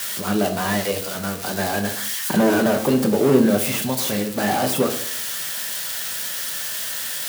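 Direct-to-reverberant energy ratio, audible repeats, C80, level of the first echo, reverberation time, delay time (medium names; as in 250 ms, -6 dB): 4.5 dB, no echo, 15.0 dB, no echo, 0.55 s, no echo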